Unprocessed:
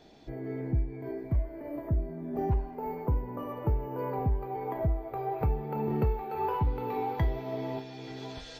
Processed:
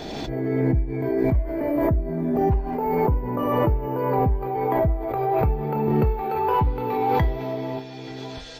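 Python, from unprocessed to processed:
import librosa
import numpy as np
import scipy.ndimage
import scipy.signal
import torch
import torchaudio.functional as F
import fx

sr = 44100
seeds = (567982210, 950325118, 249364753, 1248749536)

y = fx.pre_swell(x, sr, db_per_s=23.0)
y = y * 10.0 ** (5.5 / 20.0)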